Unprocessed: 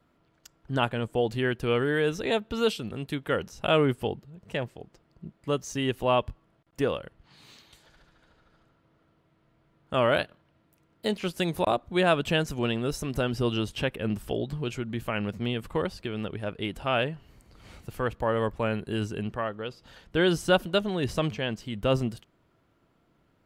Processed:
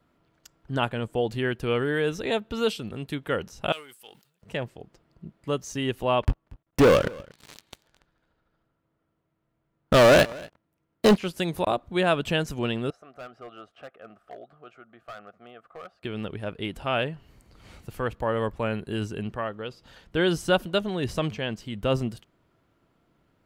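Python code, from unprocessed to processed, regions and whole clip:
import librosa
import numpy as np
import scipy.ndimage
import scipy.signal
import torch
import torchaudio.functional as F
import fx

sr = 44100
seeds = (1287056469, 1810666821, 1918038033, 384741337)

y = fx.chain(x, sr, fx.halfwave_gain(db=-3.0),
    fx.differentiator(),
    fx.sustainer(db_per_s=110.0), at=(3.72, 4.42))
y = fx.chain(y, sr, fx.high_shelf(hz=3400.0, db=-7.5),
    fx.leveller(passes=5),
    fx.echo_single(ms=235, db=-22.5), at=(6.23, 11.16))
y = fx.chain(y, sr, fx.double_bandpass(hz=940.0, octaves=0.82),
    fx.clip_hard(threshold_db=-35.5), at=(12.9, 16.03))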